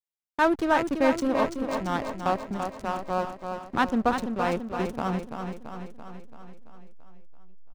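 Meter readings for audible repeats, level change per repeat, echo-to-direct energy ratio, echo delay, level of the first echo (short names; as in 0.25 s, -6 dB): 7, -4.5 dB, -4.5 dB, 0.336 s, -6.5 dB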